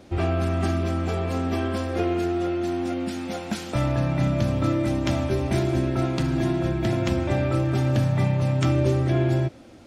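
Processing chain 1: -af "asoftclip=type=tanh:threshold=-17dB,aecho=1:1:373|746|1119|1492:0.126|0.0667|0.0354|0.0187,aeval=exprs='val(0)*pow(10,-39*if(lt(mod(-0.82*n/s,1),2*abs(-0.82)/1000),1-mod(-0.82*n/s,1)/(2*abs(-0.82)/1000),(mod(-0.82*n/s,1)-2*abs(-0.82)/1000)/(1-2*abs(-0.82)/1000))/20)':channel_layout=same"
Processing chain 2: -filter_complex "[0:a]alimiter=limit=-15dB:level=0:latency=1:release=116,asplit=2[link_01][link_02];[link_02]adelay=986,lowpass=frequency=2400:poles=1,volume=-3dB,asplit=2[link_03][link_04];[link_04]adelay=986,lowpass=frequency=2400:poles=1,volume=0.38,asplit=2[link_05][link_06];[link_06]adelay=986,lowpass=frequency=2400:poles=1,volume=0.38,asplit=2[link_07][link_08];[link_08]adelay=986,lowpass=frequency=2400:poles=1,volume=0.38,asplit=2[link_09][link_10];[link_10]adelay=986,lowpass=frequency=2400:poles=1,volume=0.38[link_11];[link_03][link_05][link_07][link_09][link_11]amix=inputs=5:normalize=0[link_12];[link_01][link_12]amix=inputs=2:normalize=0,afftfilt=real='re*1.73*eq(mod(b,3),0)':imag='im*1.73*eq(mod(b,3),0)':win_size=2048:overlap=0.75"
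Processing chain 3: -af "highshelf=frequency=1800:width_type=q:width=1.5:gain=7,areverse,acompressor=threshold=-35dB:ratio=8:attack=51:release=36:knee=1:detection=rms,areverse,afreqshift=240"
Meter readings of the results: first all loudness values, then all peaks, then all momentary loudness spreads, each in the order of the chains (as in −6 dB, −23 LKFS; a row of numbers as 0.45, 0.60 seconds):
−35.0, −24.5, −33.0 LKFS; −18.5, −11.5, −19.0 dBFS; 20, 7, 1 LU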